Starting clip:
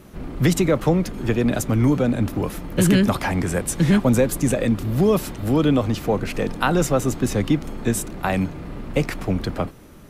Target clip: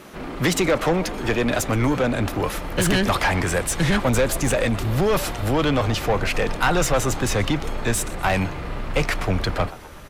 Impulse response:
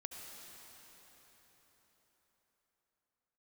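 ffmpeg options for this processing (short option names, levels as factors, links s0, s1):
-filter_complex "[0:a]asplit=4[s0][s1][s2][s3];[s1]adelay=123,afreqshift=140,volume=0.075[s4];[s2]adelay=246,afreqshift=280,volume=0.0359[s5];[s3]adelay=369,afreqshift=420,volume=0.0172[s6];[s0][s4][s5][s6]amix=inputs=4:normalize=0,asplit=2[s7][s8];[s8]highpass=f=720:p=1,volume=10,asoftclip=type=tanh:threshold=0.531[s9];[s7][s9]amix=inputs=2:normalize=0,lowpass=f=5200:p=1,volume=0.501,asubboost=boost=6.5:cutoff=91,volume=0.596"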